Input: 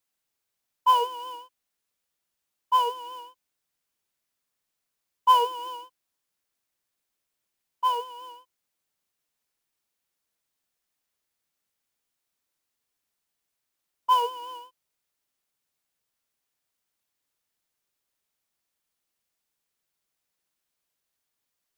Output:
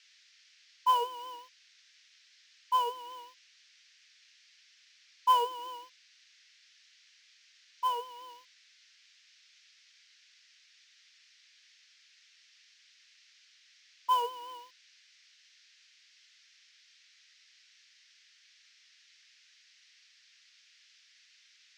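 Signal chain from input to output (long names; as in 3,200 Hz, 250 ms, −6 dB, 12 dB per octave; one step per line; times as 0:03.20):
parametric band 11,000 Hz −8.5 dB 0.28 octaves
log-companded quantiser 6 bits
noise in a band 1,700–5,900 Hz −57 dBFS
level −6 dB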